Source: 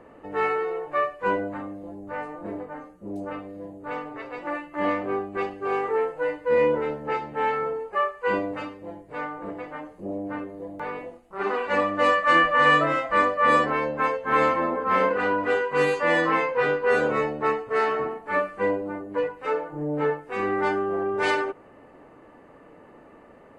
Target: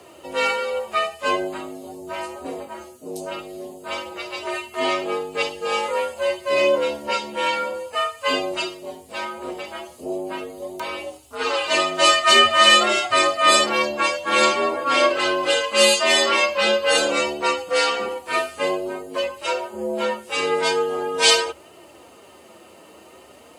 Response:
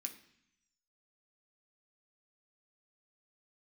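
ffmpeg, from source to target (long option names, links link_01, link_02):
-af "flanger=delay=3:depth=5.3:regen=46:speed=0.46:shape=triangular,afreqshift=67,aexciter=amount=11.5:drive=3.3:freq=2800,volume=6.5dB"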